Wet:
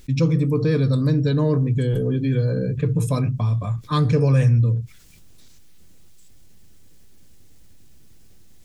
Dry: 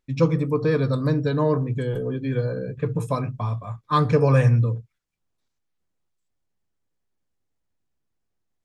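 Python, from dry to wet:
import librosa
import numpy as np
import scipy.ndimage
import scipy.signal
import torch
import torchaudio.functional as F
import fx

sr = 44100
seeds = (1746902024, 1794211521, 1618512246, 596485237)

y = fx.peak_eq(x, sr, hz=960.0, db=-12.0, octaves=2.4)
y = fx.env_flatten(y, sr, amount_pct=50)
y = y * librosa.db_to_amplitude(1.0)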